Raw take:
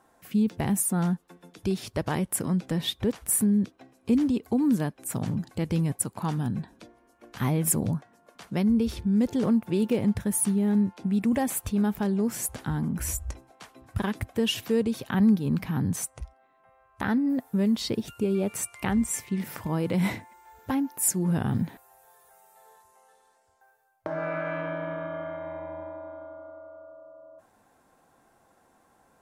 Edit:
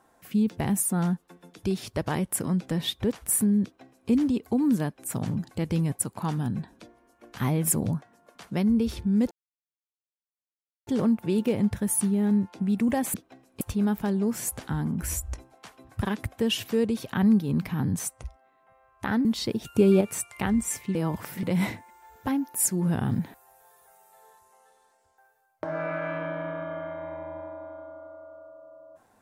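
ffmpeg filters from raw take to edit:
ffmpeg -i in.wav -filter_complex "[0:a]asplit=9[link_01][link_02][link_03][link_04][link_05][link_06][link_07][link_08][link_09];[link_01]atrim=end=9.31,asetpts=PTS-STARTPTS,afade=type=out:start_time=9.306:duration=0.004:curve=hsin,apad=pad_dur=1.56[link_10];[link_02]atrim=start=9.31:end=11.582,asetpts=PTS-STARTPTS,afade=type=in:duration=0.004:curve=hsin[link_11];[link_03]atrim=start=3.628:end=4.102[link_12];[link_04]atrim=start=11.578:end=17.222[link_13];[link_05]atrim=start=17.678:end=18.182[link_14];[link_06]atrim=start=18.178:end=18.442,asetpts=PTS-STARTPTS,volume=7dB[link_15];[link_07]atrim=start=18.438:end=19.382[link_16];[link_08]atrim=start=19.378:end=19.862,asetpts=PTS-STARTPTS,areverse[link_17];[link_09]atrim=start=19.858[link_18];[link_10][link_11]concat=n=2:v=0:a=1[link_19];[link_19][link_12]acrossfade=duration=0.004:curve1=hsin:curve2=hsin[link_20];[link_20][link_13]acrossfade=duration=0.004:curve1=hsin:curve2=hsin[link_21];[link_21][link_14]acrossfade=duration=0.004:curve1=hsin:curve2=hsin[link_22];[link_22][link_15]acrossfade=duration=0.004:curve1=hsin:curve2=hsin[link_23];[link_23][link_16]acrossfade=duration=0.004:curve1=hsin:curve2=hsin[link_24];[link_24][link_17]acrossfade=duration=0.004:curve1=hsin:curve2=hsin[link_25];[link_25][link_18]acrossfade=duration=0.004:curve1=hsin:curve2=hsin" out.wav

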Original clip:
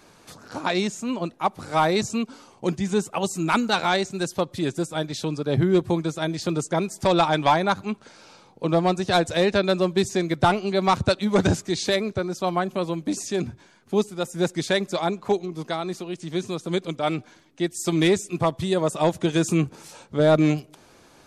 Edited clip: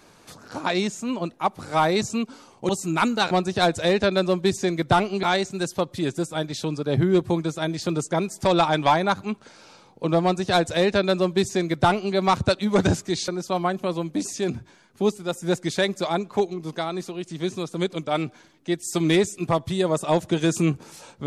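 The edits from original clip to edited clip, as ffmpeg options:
ffmpeg -i in.wav -filter_complex "[0:a]asplit=5[link_01][link_02][link_03][link_04][link_05];[link_01]atrim=end=2.692[link_06];[link_02]atrim=start=3.208:end=3.832[link_07];[link_03]atrim=start=8.828:end=10.752[link_08];[link_04]atrim=start=3.828:end=11.882[link_09];[link_05]atrim=start=12.198[link_10];[link_06][link_07]acrossfade=duration=0.004:curve1=hsin:curve2=hsin[link_11];[link_11][link_08]acrossfade=duration=0.004:curve1=hsin:curve2=hsin[link_12];[link_12][link_09]acrossfade=duration=0.004:curve1=hsin:curve2=hsin[link_13];[link_13][link_10]acrossfade=duration=0.004:curve1=hsin:curve2=hsin" out.wav

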